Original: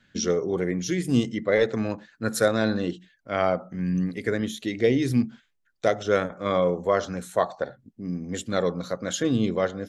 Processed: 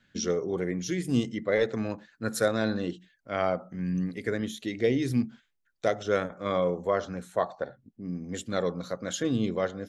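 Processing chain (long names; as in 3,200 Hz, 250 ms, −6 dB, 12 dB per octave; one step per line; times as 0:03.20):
0:06.90–0:08.15: high-shelf EQ 4,200 Hz −7.5 dB
level −4 dB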